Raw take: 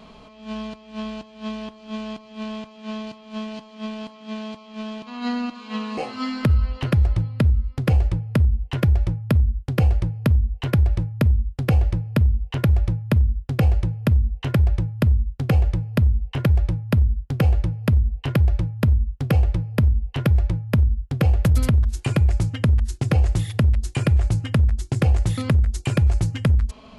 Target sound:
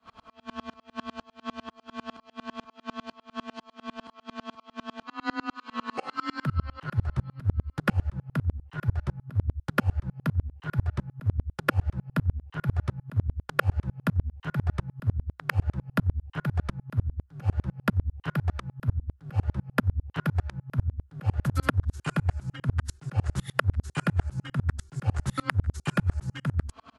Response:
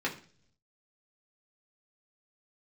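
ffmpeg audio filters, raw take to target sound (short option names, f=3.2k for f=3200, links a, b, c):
-af "afreqshift=22,firequalizer=gain_entry='entry(440,0);entry(1400,15);entry(2200,4)':delay=0.05:min_phase=1,aeval=exprs='val(0)*pow(10,-35*if(lt(mod(-10*n/s,1),2*abs(-10)/1000),1-mod(-10*n/s,1)/(2*abs(-10)/1000),(mod(-10*n/s,1)-2*abs(-10)/1000)/(1-2*abs(-10)/1000))/20)':c=same,volume=-1.5dB"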